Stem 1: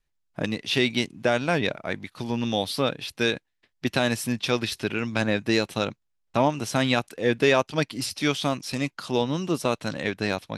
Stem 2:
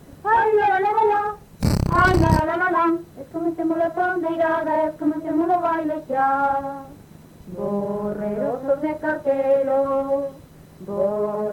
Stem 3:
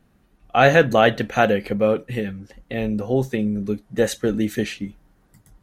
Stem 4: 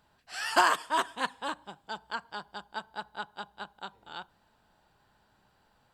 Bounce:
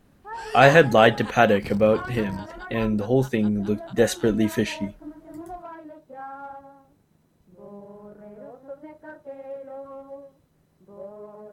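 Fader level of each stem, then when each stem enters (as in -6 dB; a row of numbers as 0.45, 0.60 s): off, -18.5 dB, 0.0 dB, -7.0 dB; off, 0.00 s, 0.00 s, 0.05 s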